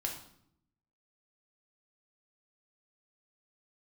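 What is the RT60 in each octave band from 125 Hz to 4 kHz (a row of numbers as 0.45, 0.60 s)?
1.1, 1.0, 0.70, 0.65, 0.55, 0.55 s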